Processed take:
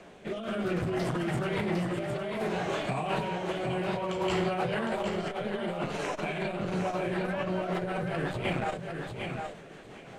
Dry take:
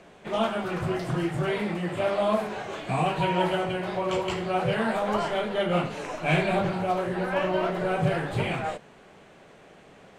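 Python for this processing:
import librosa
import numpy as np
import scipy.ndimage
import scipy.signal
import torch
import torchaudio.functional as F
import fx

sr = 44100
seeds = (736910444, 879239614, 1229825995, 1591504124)

y = fx.hum_notches(x, sr, base_hz=50, count=3)
y = fx.over_compress(y, sr, threshold_db=-30.0, ratio=-1.0)
y = fx.rotary_switch(y, sr, hz=0.6, then_hz=5.5, switch_at_s=6.42)
y = fx.echo_feedback(y, sr, ms=758, feedback_pct=16, wet_db=-6.0)
y = fx.transformer_sat(y, sr, knee_hz=370.0)
y = y * librosa.db_to_amplitude(1.0)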